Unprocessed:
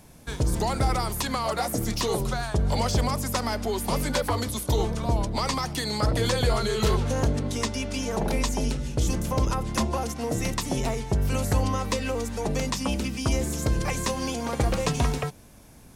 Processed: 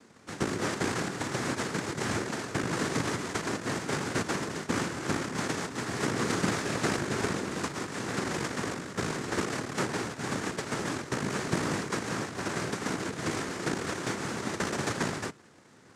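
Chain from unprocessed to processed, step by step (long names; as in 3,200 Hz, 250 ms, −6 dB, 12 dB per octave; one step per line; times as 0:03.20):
samples sorted by size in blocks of 128 samples
cochlear-implant simulation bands 3
level −4.5 dB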